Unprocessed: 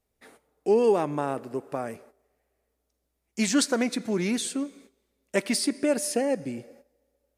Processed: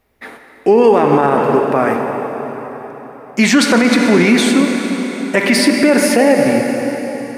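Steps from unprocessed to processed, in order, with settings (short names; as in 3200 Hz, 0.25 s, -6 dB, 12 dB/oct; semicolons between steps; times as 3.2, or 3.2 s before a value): ten-band EQ 250 Hz +3 dB, 1000 Hz +5 dB, 2000 Hz +7 dB, 8000 Hz -8 dB; plate-style reverb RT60 4.4 s, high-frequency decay 0.85×, DRR 4 dB; maximiser +15.5 dB; gain -1 dB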